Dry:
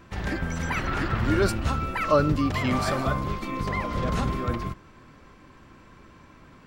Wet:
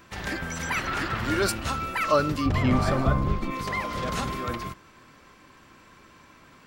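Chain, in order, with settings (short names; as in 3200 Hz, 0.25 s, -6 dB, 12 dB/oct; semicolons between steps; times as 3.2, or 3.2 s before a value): tilt +2 dB/oct, from 2.45 s -1.5 dB/oct, from 3.5 s +2 dB/oct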